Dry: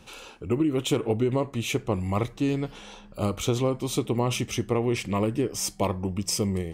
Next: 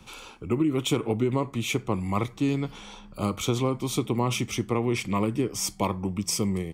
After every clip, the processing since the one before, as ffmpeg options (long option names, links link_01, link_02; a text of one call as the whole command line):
ffmpeg -i in.wav -filter_complex "[0:a]aecho=1:1:0.9:0.35,acrossover=split=110|540|5800[link_01][link_02][link_03][link_04];[link_01]acompressor=threshold=-44dB:ratio=6[link_05];[link_05][link_02][link_03][link_04]amix=inputs=4:normalize=0" out.wav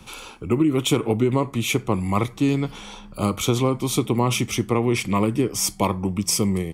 ffmpeg -i in.wav -af "equalizer=frequency=11000:width=2.1:gain=6,volume=5dB" out.wav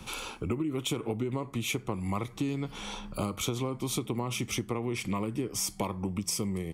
ffmpeg -i in.wav -af "acompressor=threshold=-29dB:ratio=6" out.wav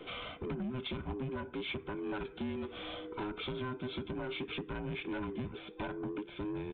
ffmpeg -i in.wav -af "afftfilt=real='real(if(between(b,1,1008),(2*floor((b-1)/24)+1)*24-b,b),0)':imag='imag(if(between(b,1,1008),(2*floor((b-1)/24)+1)*24-b,b),0)*if(between(b,1,1008),-1,1)':win_size=2048:overlap=0.75,aresample=8000,asoftclip=type=tanh:threshold=-30.5dB,aresample=44100,volume=-2.5dB" out.wav